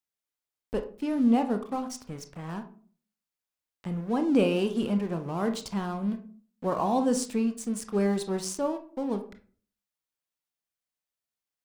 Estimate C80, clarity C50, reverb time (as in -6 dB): 16.5 dB, 12.0 dB, 0.45 s